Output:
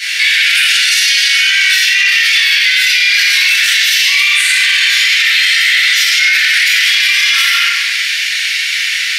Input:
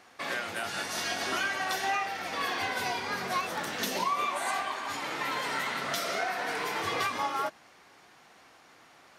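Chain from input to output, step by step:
Butterworth high-pass 1,800 Hz 48 dB per octave
parametric band 3,400 Hz +6 dB 1.6 octaves
downward compressor, threshold −36 dBFS, peak gain reduction 11 dB
rectangular room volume 750 cubic metres, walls mixed, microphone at 7.6 metres
boost into a limiter +30 dB
level −1 dB

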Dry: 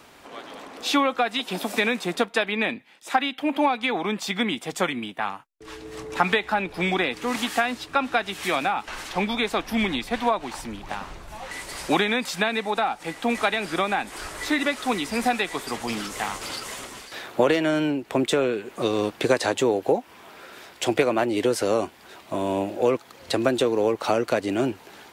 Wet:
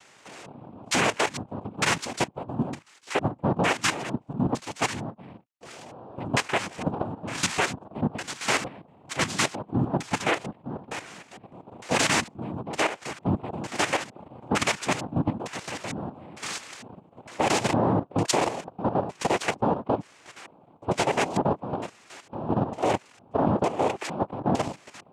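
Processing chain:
auto-filter low-pass square 1.1 Hz 300–3,100 Hz
cochlear-implant simulation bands 4
output level in coarse steps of 11 dB

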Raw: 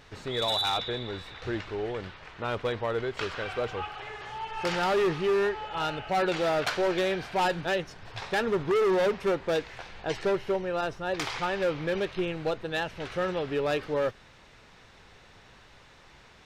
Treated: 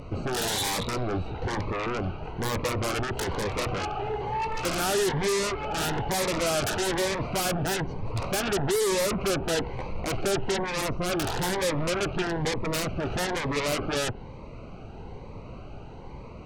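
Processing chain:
adaptive Wiener filter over 25 samples
treble cut that deepens with the level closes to 2,000 Hz, closed at −24.5 dBFS
in parallel at −3.5 dB: sine wavefolder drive 18 dB, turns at −19.5 dBFS
on the sum: phaser whose notches keep moving one way rising 1.1 Hz
level −2 dB

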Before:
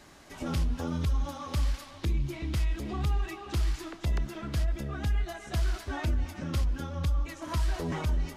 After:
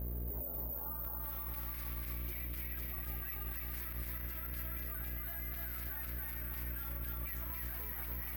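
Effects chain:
dynamic equaliser 2,800 Hz, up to −8 dB, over −57 dBFS, Q 0.99
reversed playback
downward compressor, threshold −34 dBFS, peak gain reduction 9.5 dB
reversed playback
dead-zone distortion −58.5 dBFS
band-pass filter sweep 410 Hz → 2,100 Hz, 0:00.28–0:01.36
bad sample-rate conversion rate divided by 3×, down filtered, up zero stuff
on a send at −13.5 dB: convolution reverb RT60 0.35 s, pre-delay 4 ms
on the sum: hum with harmonics 60 Hz, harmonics 11, −50 dBFS −9 dB per octave
high-shelf EQ 8,100 Hz +7 dB
feedback echo with a high-pass in the loop 287 ms, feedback 49%, high-pass 420 Hz, level −4 dB
brickwall limiter −41 dBFS, peak gain reduction 17.5 dB
level +10.5 dB

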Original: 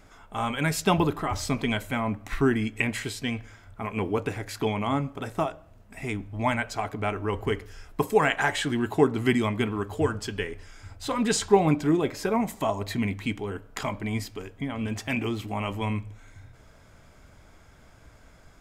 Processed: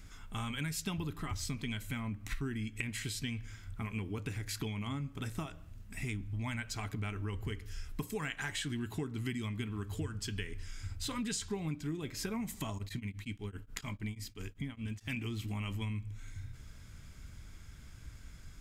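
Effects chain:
guitar amp tone stack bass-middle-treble 6-0-2
downward compressor 6 to 1, threshold −52 dBFS, peak gain reduction 15 dB
0:12.77–0:15.13: tremolo along a rectified sine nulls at 9.5 Hz → 3.8 Hz
level +17 dB

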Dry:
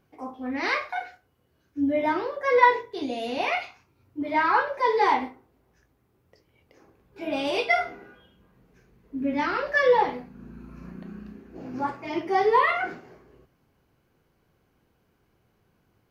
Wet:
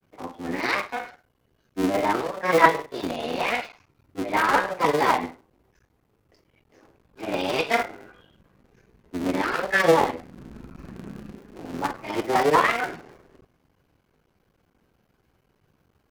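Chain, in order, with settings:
sub-harmonics by changed cycles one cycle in 3, muted
granular cloud 100 ms, spray 16 ms, pitch spread up and down by 0 semitones
level +4 dB

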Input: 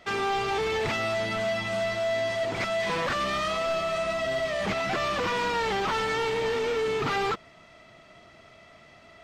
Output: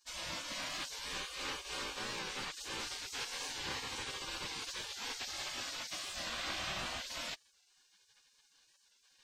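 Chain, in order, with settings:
gate on every frequency bin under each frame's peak −25 dB weak
wow of a warped record 45 rpm, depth 100 cents
level +1 dB

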